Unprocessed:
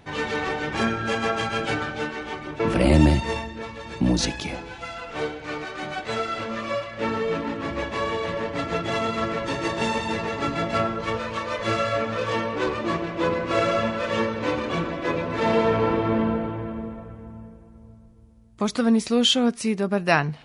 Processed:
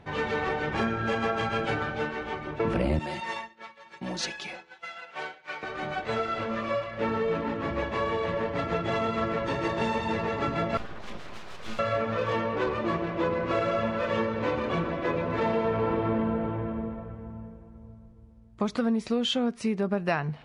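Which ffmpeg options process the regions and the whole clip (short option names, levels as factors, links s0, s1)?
-filter_complex "[0:a]asettb=1/sr,asplit=3[s0][s1][s2];[s0]atrim=end=2.994[s3];[s1]atrim=start=2.99:end=5.63,asetpts=PTS-STARTPTS,afade=t=in:d=0.004:c=qsin,afade=t=out:st=2.636:d=0.004:c=qsin,highpass=f=1400:p=1,agate=range=0.0224:threshold=0.0141:ratio=3:release=100:detection=peak,aecho=1:1:5.4:0.71,atrim=end_sample=116424[s4];[s2]atrim=start=5.626[s5];[s3][s4]acrossfade=d=0.004:c1=hsin:c2=qsin[s6];[s6][s5]acrossfade=d=0.004:c1=qsin:c2=hsin,asettb=1/sr,asplit=3[s7][s8][s9];[s7]atrim=end=10.774[s10];[s8]atrim=start=10.77:end=11.79,asetpts=PTS-STARTPTS,afade=t=in:d=0.004:c=qsin,afade=t=out:st=1.016:d=0.004:c=qsin,acrossover=split=160|3000[s11][s12][s13];[s12]acompressor=threshold=0.0112:ratio=5:attack=3.2:release=140:knee=2.83:detection=peak[s14];[s11][s14][s13]amix=inputs=3:normalize=0,aeval=exprs='abs(val(0))':c=same[s15];[s9]atrim=start=11.786[s16];[s10][s15]acrossfade=d=0.004:c1=hsin:c2=qsin[s17];[s17][s16]acrossfade=d=0.004:c1=qsin:c2=hsin,lowpass=f=2100:p=1,equalizer=f=290:t=o:w=0.23:g=-5.5,acompressor=threshold=0.0708:ratio=5"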